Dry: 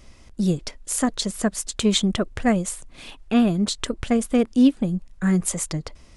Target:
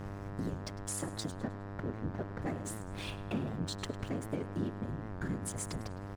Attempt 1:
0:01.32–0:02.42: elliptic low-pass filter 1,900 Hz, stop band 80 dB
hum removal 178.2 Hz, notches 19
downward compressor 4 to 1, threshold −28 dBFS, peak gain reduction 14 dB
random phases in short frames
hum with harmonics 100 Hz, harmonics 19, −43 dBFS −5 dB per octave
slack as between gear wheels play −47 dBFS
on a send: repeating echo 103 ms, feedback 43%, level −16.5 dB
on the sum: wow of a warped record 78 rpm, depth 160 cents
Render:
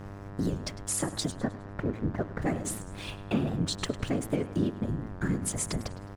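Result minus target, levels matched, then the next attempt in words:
downward compressor: peak gain reduction −8 dB
0:01.32–0:02.42: elliptic low-pass filter 1,900 Hz, stop band 80 dB
hum removal 178.2 Hz, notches 19
downward compressor 4 to 1, threshold −38.5 dBFS, peak gain reduction 22 dB
random phases in short frames
hum with harmonics 100 Hz, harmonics 19, −43 dBFS −5 dB per octave
slack as between gear wheels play −47 dBFS
on a send: repeating echo 103 ms, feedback 43%, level −16.5 dB
on the sum: wow of a warped record 78 rpm, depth 160 cents

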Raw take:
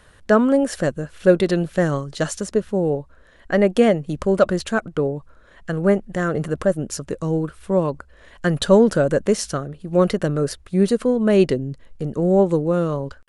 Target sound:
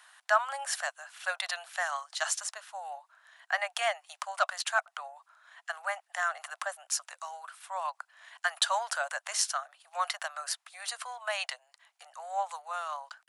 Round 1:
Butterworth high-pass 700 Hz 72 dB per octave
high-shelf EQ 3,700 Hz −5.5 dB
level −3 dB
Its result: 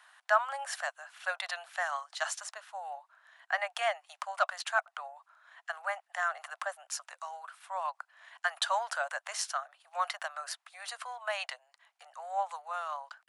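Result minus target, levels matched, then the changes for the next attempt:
8,000 Hz band −5.0 dB
change: high-shelf EQ 3,700 Hz +3 dB

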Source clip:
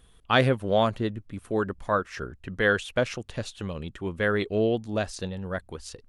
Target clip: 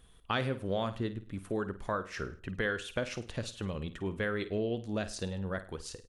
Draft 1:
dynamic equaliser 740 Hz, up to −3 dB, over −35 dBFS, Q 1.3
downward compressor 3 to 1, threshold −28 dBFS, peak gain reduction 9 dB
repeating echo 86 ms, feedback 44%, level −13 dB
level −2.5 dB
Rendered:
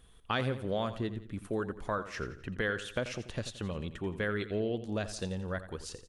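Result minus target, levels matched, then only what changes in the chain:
echo 34 ms late
change: repeating echo 52 ms, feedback 44%, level −13 dB

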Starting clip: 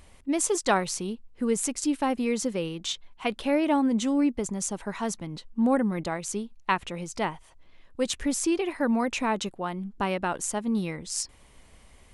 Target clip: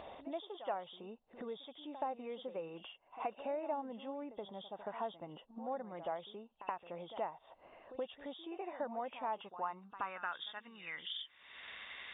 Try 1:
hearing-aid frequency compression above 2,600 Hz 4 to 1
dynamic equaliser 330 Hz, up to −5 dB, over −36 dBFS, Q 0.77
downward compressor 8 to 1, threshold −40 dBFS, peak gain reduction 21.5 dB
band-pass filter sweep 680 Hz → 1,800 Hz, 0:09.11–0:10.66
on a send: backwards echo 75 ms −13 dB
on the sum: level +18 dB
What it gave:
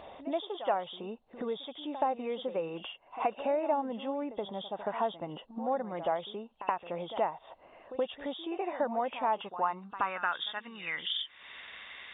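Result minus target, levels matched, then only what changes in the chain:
downward compressor: peak gain reduction −9 dB
change: downward compressor 8 to 1, threshold −50.5 dBFS, peak gain reduction 31 dB

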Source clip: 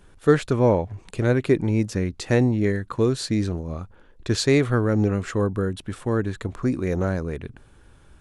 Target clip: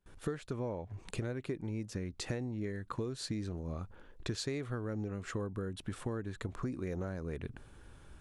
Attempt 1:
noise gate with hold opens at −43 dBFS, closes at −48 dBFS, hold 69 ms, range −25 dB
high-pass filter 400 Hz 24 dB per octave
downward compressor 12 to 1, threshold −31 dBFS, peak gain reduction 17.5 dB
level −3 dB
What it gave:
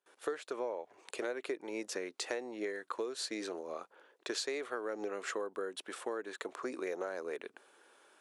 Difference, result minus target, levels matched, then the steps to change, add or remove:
500 Hz band +3.5 dB
remove: high-pass filter 400 Hz 24 dB per octave

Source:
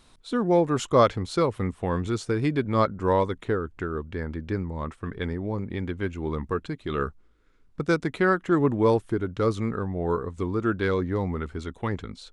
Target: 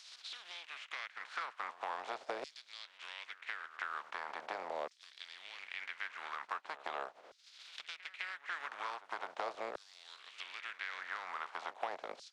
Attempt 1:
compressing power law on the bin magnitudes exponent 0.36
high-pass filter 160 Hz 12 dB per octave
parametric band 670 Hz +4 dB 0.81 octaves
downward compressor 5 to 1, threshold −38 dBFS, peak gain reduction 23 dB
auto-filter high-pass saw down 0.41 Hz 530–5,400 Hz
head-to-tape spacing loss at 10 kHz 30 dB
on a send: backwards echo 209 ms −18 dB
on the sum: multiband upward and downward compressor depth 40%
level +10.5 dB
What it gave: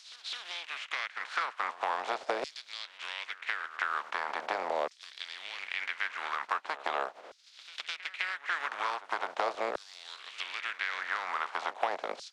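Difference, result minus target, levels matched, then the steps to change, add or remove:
downward compressor: peak gain reduction −8.5 dB; 125 Hz band −2.5 dB
change: high-pass filter 69 Hz 12 dB per octave
change: downward compressor 5 to 1, threshold −48.5 dBFS, peak gain reduction 31.5 dB

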